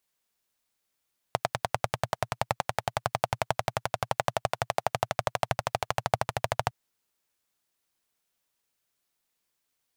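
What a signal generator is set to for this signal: single-cylinder engine model, changing speed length 5.36 s, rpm 1200, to 1600, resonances 120/690 Hz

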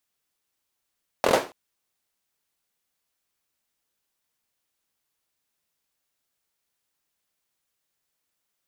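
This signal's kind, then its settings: hand clap length 0.28 s, bursts 5, apart 23 ms, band 520 Hz, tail 0.32 s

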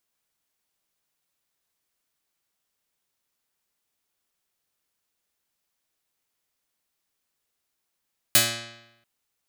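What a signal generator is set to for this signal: plucked string A#2, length 0.69 s, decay 0.92 s, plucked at 0.26, medium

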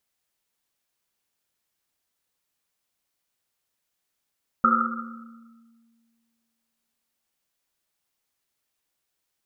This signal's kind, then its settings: Risset drum length 3.50 s, pitch 230 Hz, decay 2.06 s, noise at 1.3 kHz, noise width 190 Hz, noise 65%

